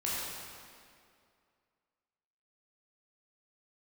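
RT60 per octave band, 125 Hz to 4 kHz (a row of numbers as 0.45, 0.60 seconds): 2.1, 2.3, 2.4, 2.2, 2.0, 1.8 seconds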